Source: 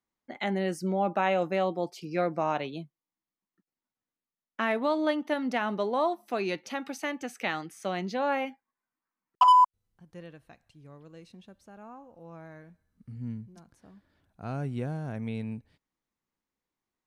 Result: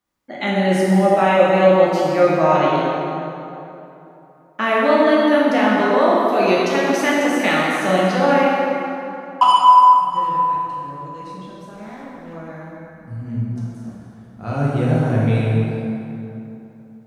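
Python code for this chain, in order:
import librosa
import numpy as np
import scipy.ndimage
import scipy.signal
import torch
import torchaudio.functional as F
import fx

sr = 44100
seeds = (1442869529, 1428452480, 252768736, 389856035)

p1 = fx.lower_of_two(x, sr, delay_ms=0.31, at=(11.75, 12.33))
p2 = fx.rider(p1, sr, range_db=10, speed_s=0.5)
p3 = p1 + (p2 * librosa.db_to_amplitude(1.5))
p4 = fx.rev_plate(p3, sr, seeds[0], rt60_s=3.1, hf_ratio=0.6, predelay_ms=0, drr_db=-7.0)
y = p4 * librosa.db_to_amplitude(-1.5)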